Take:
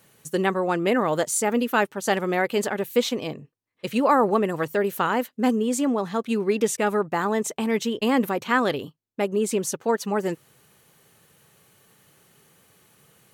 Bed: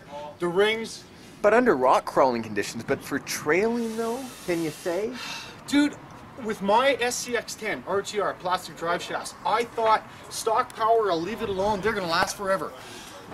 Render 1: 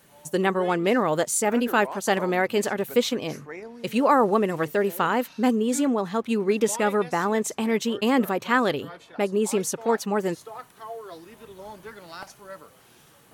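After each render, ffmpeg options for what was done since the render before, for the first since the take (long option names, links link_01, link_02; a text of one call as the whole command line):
ffmpeg -i in.wav -i bed.wav -filter_complex "[1:a]volume=-16.5dB[link_01];[0:a][link_01]amix=inputs=2:normalize=0" out.wav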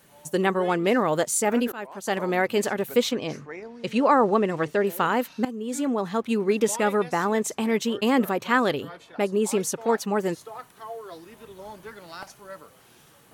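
ffmpeg -i in.wav -filter_complex "[0:a]asettb=1/sr,asplit=3[link_01][link_02][link_03];[link_01]atrim=end=3.114[link_04];[link_02]atrim=start=3.11:end=4.87,asetpts=PTS-STARTPTS,afade=type=in:duration=0.004:curve=qsin,afade=type=out:start_time=1.756:duration=0.004:curve=qsin,lowpass=6900[link_05];[link_03]atrim=start=4.866[link_06];[link_04][link_05]acrossfade=duration=0.004:curve1=hsin:curve2=qsin[link_07];[link_07][link_06]acrossfade=duration=0.004:curve1=qsin:curve2=hsin,asplit=3[link_08][link_09][link_10];[link_08]atrim=end=1.72,asetpts=PTS-STARTPTS,afade=type=out:start_time=1.716:duration=0.004:curve=hsin:silence=0.0841395[link_11];[link_09]atrim=start=1.72:end=5.45,asetpts=PTS-STARTPTS,afade=type=in:duration=0.65:silence=0.0841395,afade=type=out:start_time=3.726:duration=0.004:curve=hsin:silence=0.141254[link_12];[link_10]atrim=start=5.45,asetpts=PTS-STARTPTS,afade=type=in:duration=0.61:silence=0.141254[link_13];[link_11][link_12][link_13]concat=n=3:v=0:a=1" out.wav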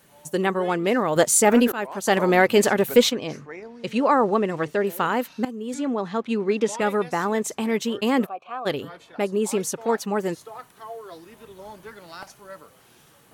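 ffmpeg -i in.wav -filter_complex "[0:a]asettb=1/sr,asplit=3[link_01][link_02][link_03];[link_01]atrim=end=1.164[link_04];[link_02]atrim=start=1.16:end=3.1,asetpts=PTS-STARTPTS,afade=type=in:duration=0.004:curve=qsin,afade=type=out:start_time=1.936:duration=0.004:curve=qsin,acontrast=74[link_05];[link_03]atrim=start=3.096[link_06];[link_04][link_05]acrossfade=duration=0.004:curve1=hsin:curve2=qsin[link_07];[link_07][link_06]acrossfade=duration=0.004:curve1=qsin:curve2=hsin,asettb=1/sr,asplit=3[link_08][link_09][link_10];[link_08]atrim=end=5.744[link_11];[link_09]atrim=start=5.74:end=6.81,asetpts=PTS-STARTPTS,afade=type=in:duration=0.004:curve=qsin,afade=type=out:start_time=1.066:duration=0.004:curve=qsin,highpass=110,lowpass=6000[link_12];[link_10]atrim=start=6.806[link_13];[link_11][link_12]acrossfade=duration=0.004:curve1=hsin:curve2=qsin[link_14];[link_14][link_13]acrossfade=duration=0.004:curve1=qsin:curve2=hsin,asplit=3[link_15][link_16][link_17];[link_15]afade=type=out:start_time=8.25:duration=0.02[link_18];[link_16]asplit=3[link_19][link_20][link_21];[link_19]bandpass=frequency=730:width_type=q:width=8,volume=0dB[link_22];[link_20]bandpass=frequency=1090:width_type=q:width=8,volume=-6dB[link_23];[link_21]bandpass=frequency=2440:width_type=q:width=8,volume=-9dB[link_24];[link_22][link_23][link_24]amix=inputs=3:normalize=0,afade=type=in:start_time=8.25:duration=0.02,afade=type=out:start_time=8.65:duration=0.02[link_25];[link_17]afade=type=in:start_time=8.65:duration=0.02[link_26];[link_18][link_25][link_26]amix=inputs=3:normalize=0" out.wav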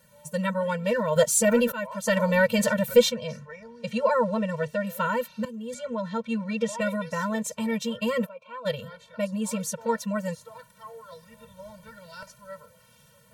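ffmpeg -i in.wav -af "afftfilt=real='re*eq(mod(floor(b*sr/1024/220),2),0)':imag='im*eq(mod(floor(b*sr/1024/220),2),0)':win_size=1024:overlap=0.75" out.wav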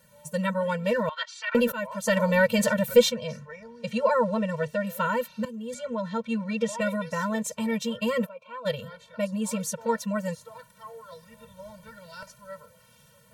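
ffmpeg -i in.wav -filter_complex "[0:a]asettb=1/sr,asplit=3[link_01][link_02][link_03];[link_01]atrim=end=1.094[link_04];[link_02]atrim=start=1.09:end=1.55,asetpts=PTS-STARTPTS,afade=type=in:duration=0.004:curve=qsin,afade=type=out:start_time=0.456:duration=0.004:curve=qsin,asuperpass=centerf=2200:order=8:qfactor=0.66[link_05];[link_03]atrim=start=1.546[link_06];[link_04][link_05]acrossfade=duration=0.004:curve1=hsin:curve2=qsin[link_07];[link_07][link_06]acrossfade=duration=0.004:curve1=qsin:curve2=hsin" out.wav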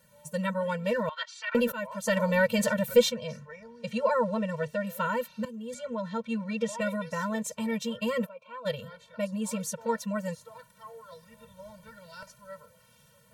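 ffmpeg -i in.wav -af "volume=-3dB" out.wav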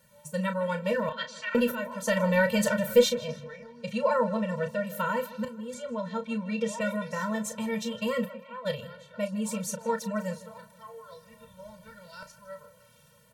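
ffmpeg -i in.wav -filter_complex "[0:a]asplit=2[link_01][link_02];[link_02]adelay=33,volume=-9dB[link_03];[link_01][link_03]amix=inputs=2:normalize=0,asplit=2[link_04][link_05];[link_05]adelay=158,lowpass=frequency=4400:poles=1,volume=-16.5dB,asplit=2[link_06][link_07];[link_07]adelay=158,lowpass=frequency=4400:poles=1,volume=0.5,asplit=2[link_08][link_09];[link_09]adelay=158,lowpass=frequency=4400:poles=1,volume=0.5,asplit=2[link_10][link_11];[link_11]adelay=158,lowpass=frequency=4400:poles=1,volume=0.5[link_12];[link_04][link_06][link_08][link_10][link_12]amix=inputs=5:normalize=0" out.wav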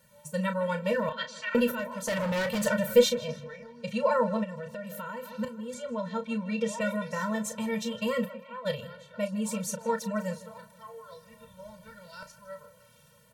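ffmpeg -i in.wav -filter_complex "[0:a]asettb=1/sr,asplit=3[link_01][link_02][link_03];[link_01]atrim=end=1.794[link_04];[link_02]atrim=start=1.79:end=2.66,asetpts=PTS-STARTPTS,afade=type=in:duration=0.004:curve=qsin,afade=type=out:start_time=0.866:duration=0.004:curve=qsin,asoftclip=type=hard:threshold=-26.5dB[link_05];[link_03]atrim=start=2.656[link_06];[link_04][link_05]acrossfade=duration=0.004:curve1=hsin:curve2=qsin[link_07];[link_07][link_06]acrossfade=duration=0.004:curve1=qsin:curve2=hsin,asplit=3[link_08][link_09][link_10];[link_08]afade=type=out:start_time=4.43:duration=0.02[link_11];[link_09]acompressor=threshold=-36dB:ratio=4:attack=3.2:release=140:knee=1:detection=peak,afade=type=in:start_time=4.43:duration=0.02,afade=type=out:start_time=5.36:duration=0.02[link_12];[link_10]afade=type=in:start_time=5.36:duration=0.02[link_13];[link_11][link_12][link_13]amix=inputs=3:normalize=0" out.wav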